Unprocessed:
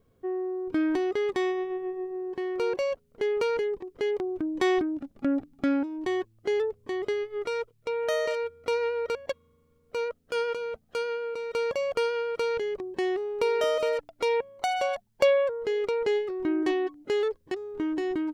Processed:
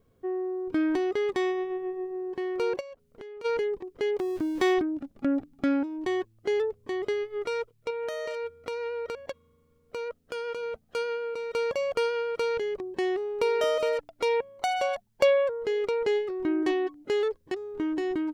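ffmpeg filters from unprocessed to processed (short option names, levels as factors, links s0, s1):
-filter_complex "[0:a]asplit=3[s0][s1][s2];[s0]afade=t=out:st=2.79:d=0.02[s3];[s1]acompressor=threshold=0.00891:ratio=8:attack=3.2:release=140:knee=1:detection=peak,afade=t=in:st=2.79:d=0.02,afade=t=out:st=3.44:d=0.02[s4];[s2]afade=t=in:st=3.44:d=0.02[s5];[s3][s4][s5]amix=inputs=3:normalize=0,asettb=1/sr,asplit=3[s6][s7][s8];[s6]atrim=end=4.194[s9];[s7]atrim=start=4.19:end=4.74,asetpts=PTS-STARTPTS,afade=t=in:d=0.004:c=qsin,afade=t=out:st=0.546:d=0.004:c=qsin,aeval=exprs='val(0)+0.5*0.01*sgn(val(0))':c=same[s10];[s8]atrim=start=4.736[s11];[s9][s10]acrossfade=d=0.004:c1=hsin:c2=qsin[s12];[s12][s11]acrossfade=d=0.004:c1=qsin:c2=hsin,asettb=1/sr,asplit=3[s13][s14][s15];[s13]atrim=end=7.904[s16];[s14]atrim=start=7.9:end=10.63,asetpts=PTS-STARTPTS,afade=t=in:d=0.004:c=qsin,afade=t=out:st=2.726:d=0.004:c=qsin,acompressor=threshold=0.0316:ratio=6:attack=3.2:release=140:knee=1:detection=peak[s17];[s15]atrim=start=10.626[s18];[s16][s17]acrossfade=d=0.004:c1=hsin:c2=qsin[s19];[s19][s18]acrossfade=d=0.004:c1=qsin:c2=hsin"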